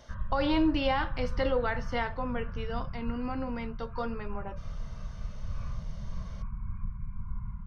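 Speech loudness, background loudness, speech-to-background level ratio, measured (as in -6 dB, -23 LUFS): -32.5 LUFS, -41.0 LUFS, 8.5 dB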